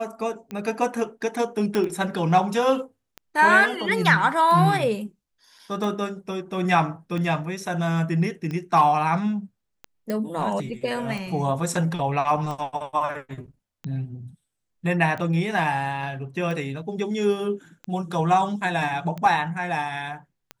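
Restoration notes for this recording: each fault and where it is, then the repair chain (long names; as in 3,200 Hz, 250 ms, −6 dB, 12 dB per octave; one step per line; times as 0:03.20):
scratch tick 45 rpm −20 dBFS
0:01.75: click −12 dBFS
0:10.10: click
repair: click removal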